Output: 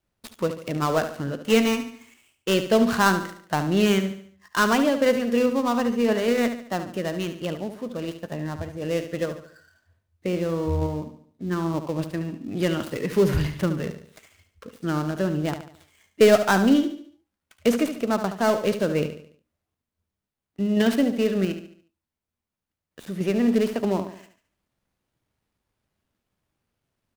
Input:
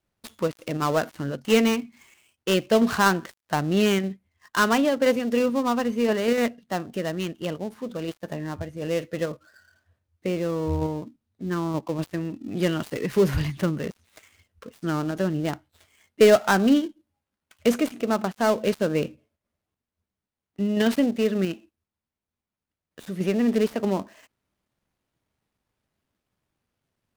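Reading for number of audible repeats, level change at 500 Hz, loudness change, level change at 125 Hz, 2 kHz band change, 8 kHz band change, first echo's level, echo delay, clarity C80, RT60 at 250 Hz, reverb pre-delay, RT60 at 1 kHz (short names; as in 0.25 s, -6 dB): 4, +0.5 dB, +0.5 dB, +1.5 dB, +0.5 dB, +0.5 dB, -10.0 dB, 72 ms, none, none, none, none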